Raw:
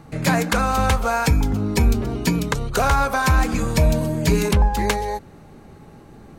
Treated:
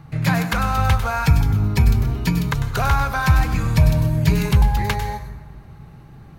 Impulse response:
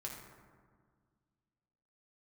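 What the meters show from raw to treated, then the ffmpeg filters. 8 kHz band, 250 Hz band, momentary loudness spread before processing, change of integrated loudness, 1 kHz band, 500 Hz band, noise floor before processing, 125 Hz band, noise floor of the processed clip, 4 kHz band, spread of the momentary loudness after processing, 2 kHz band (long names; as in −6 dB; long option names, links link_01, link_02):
−6.0 dB, −1.0 dB, 4 LU, +1.0 dB, −1.5 dB, −6.5 dB, −45 dBFS, +4.5 dB, −42 dBFS, −1.5 dB, 5 LU, −0.5 dB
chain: -filter_complex "[0:a]equalizer=frequency=125:width_type=o:width=1:gain=9,equalizer=frequency=250:width_type=o:width=1:gain=-7,equalizer=frequency=500:width_type=o:width=1:gain=-7,equalizer=frequency=8000:width_type=o:width=1:gain=-9,asplit=2[link_01][link_02];[1:a]atrim=start_sample=2205,highshelf=frequency=4900:gain=12,adelay=98[link_03];[link_02][link_03]afir=irnorm=-1:irlink=0,volume=-10dB[link_04];[link_01][link_04]amix=inputs=2:normalize=0"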